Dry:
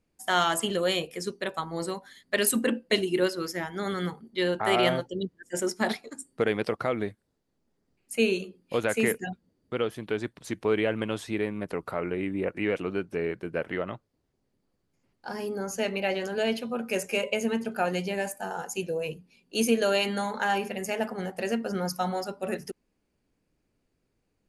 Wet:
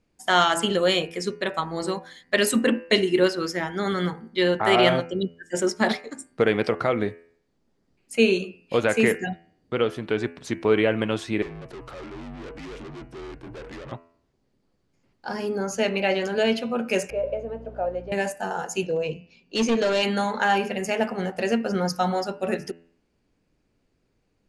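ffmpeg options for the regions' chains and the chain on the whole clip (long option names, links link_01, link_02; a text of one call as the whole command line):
ffmpeg -i in.wav -filter_complex "[0:a]asettb=1/sr,asplit=3[link_01][link_02][link_03];[link_01]atrim=end=11.424[link_04];[link_02]atrim=start=11.42:end=13.92,asetpts=PTS-STARTPTS,afade=type=in:duration=0.004:curve=qsin,afade=type=out:start_time=2.496:duration=0.004:curve=qsin,bandreject=frequency=174.2:width_type=h:width=4,bandreject=frequency=348.4:width_type=h:width=4,bandreject=frequency=522.6:width_type=h:width=4,bandreject=frequency=696.8:width_type=h:width=4,bandreject=frequency=871:width_type=h:width=4,bandreject=frequency=1045.2:width_type=h:width=4,bandreject=frequency=1219.4:width_type=h:width=4,aeval=exprs='(tanh(126*val(0)+0.45)-tanh(0.45))/126':channel_layout=same,afreqshift=-48[link_05];[link_03]atrim=start=13.916[link_06];[link_04][link_05]acrossfade=duration=0.004:curve1=hsin:curve2=qsin[link_07];[link_07][link_06]acrossfade=duration=0.004:curve1=qsin:curve2=hsin,asettb=1/sr,asplit=3[link_08][link_09][link_10];[link_08]atrim=end=17.104[link_11];[link_09]atrim=start=17.1:end=18.12,asetpts=PTS-STARTPTS,afade=type=in:duration=0.004:curve=qsin,afade=type=out:start_time=1.016:duration=0.004:curve=qsin,aeval=exprs='val(0)+0.5*0.0126*sgn(val(0))':channel_layout=same,bandpass=frequency=580:width_type=q:width=4.6,aeval=exprs='val(0)+0.00398*(sin(2*PI*60*n/s)+sin(2*PI*2*60*n/s)/2+sin(2*PI*3*60*n/s)/3+sin(2*PI*4*60*n/s)/4+sin(2*PI*5*60*n/s)/5)':channel_layout=same[link_12];[link_10]atrim=start=18.116[link_13];[link_11][link_12]acrossfade=duration=0.004:curve1=hsin:curve2=qsin[link_14];[link_14][link_13]acrossfade=duration=0.004:curve1=qsin:curve2=hsin,asettb=1/sr,asplit=3[link_15][link_16][link_17];[link_15]atrim=end=18.874[link_18];[link_16]atrim=start=18.87:end=20.03,asetpts=PTS-STARTPTS,afade=type=in:duration=0.004:curve=qsin,afade=type=out:start_time=1.156:duration=0.004:curve=qsin,lowpass=frequency=6800:width=0.5412,lowpass=frequency=6800:width=1.3066,adynamicequalizer=threshold=0.00708:dfrequency=2000:dqfactor=0.95:tfrequency=2000:tqfactor=0.95:attack=5:release=100:ratio=0.375:range=3:mode=cutabove:tftype=bell,asoftclip=type=hard:threshold=-23dB[link_19];[link_17]atrim=start=20.026[link_20];[link_18][link_19]acrossfade=duration=0.004:curve1=hsin:curve2=qsin[link_21];[link_21][link_20]acrossfade=duration=0.004:curve1=qsin:curve2=hsin,lowpass=7200,bandreject=frequency=84.14:width_type=h:width=4,bandreject=frequency=168.28:width_type=h:width=4,bandreject=frequency=252.42:width_type=h:width=4,bandreject=frequency=336.56:width_type=h:width=4,bandreject=frequency=420.7:width_type=h:width=4,bandreject=frequency=504.84:width_type=h:width=4,bandreject=frequency=588.98:width_type=h:width=4,bandreject=frequency=673.12:width_type=h:width=4,bandreject=frequency=757.26:width_type=h:width=4,bandreject=frequency=841.4:width_type=h:width=4,bandreject=frequency=925.54:width_type=h:width=4,bandreject=frequency=1009.68:width_type=h:width=4,bandreject=frequency=1093.82:width_type=h:width=4,bandreject=frequency=1177.96:width_type=h:width=4,bandreject=frequency=1262.1:width_type=h:width=4,bandreject=frequency=1346.24:width_type=h:width=4,bandreject=frequency=1430.38:width_type=h:width=4,bandreject=frequency=1514.52:width_type=h:width=4,bandreject=frequency=1598.66:width_type=h:width=4,bandreject=frequency=1682.8:width_type=h:width=4,bandreject=frequency=1766.94:width_type=h:width=4,bandreject=frequency=1851.08:width_type=h:width=4,bandreject=frequency=1935.22:width_type=h:width=4,bandreject=frequency=2019.36:width_type=h:width=4,bandreject=frequency=2103.5:width_type=h:width=4,bandreject=frequency=2187.64:width_type=h:width=4,bandreject=frequency=2271.78:width_type=h:width=4,bandreject=frequency=2355.92:width_type=h:width=4,bandreject=frequency=2440.06:width_type=h:width=4,bandreject=frequency=2524.2:width_type=h:width=4,bandreject=frequency=2608.34:width_type=h:width=4,bandreject=frequency=2692.48:width_type=h:width=4,bandreject=frequency=2776.62:width_type=h:width=4,bandreject=frequency=2860.76:width_type=h:width=4,bandreject=frequency=2944.9:width_type=h:width=4,volume=5.5dB" out.wav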